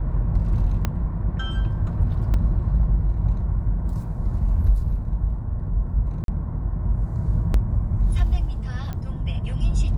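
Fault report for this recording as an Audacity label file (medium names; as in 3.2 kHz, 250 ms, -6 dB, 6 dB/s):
0.850000	0.850000	pop -10 dBFS
2.340000	2.340000	dropout 2.5 ms
6.240000	6.280000	dropout 42 ms
7.540000	7.540000	dropout 2.5 ms
8.930000	8.930000	pop -19 dBFS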